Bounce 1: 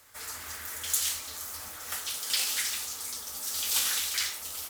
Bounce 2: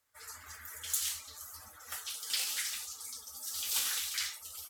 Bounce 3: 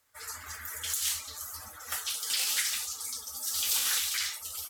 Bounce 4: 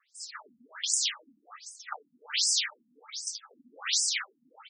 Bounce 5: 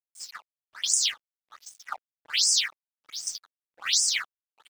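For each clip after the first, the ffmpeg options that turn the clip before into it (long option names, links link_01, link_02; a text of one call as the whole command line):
ffmpeg -i in.wav -af "afftdn=noise_reduction=16:noise_floor=-44,volume=-5dB" out.wav
ffmpeg -i in.wav -af "alimiter=limit=-23dB:level=0:latency=1:release=179,volume=7dB" out.wav
ffmpeg -i in.wav -af "afftfilt=real='re*between(b*sr/1024,200*pow(6900/200,0.5+0.5*sin(2*PI*1.3*pts/sr))/1.41,200*pow(6900/200,0.5+0.5*sin(2*PI*1.3*pts/sr))*1.41)':imag='im*between(b*sr/1024,200*pow(6900/200,0.5+0.5*sin(2*PI*1.3*pts/sr))/1.41,200*pow(6900/200,0.5+0.5*sin(2*PI*1.3*pts/sr))*1.41)':win_size=1024:overlap=0.75,volume=7.5dB" out.wav
ffmpeg -i in.wav -af "aeval=exprs='sgn(val(0))*max(abs(val(0))-0.00376,0)':channel_layout=same,volume=4.5dB" out.wav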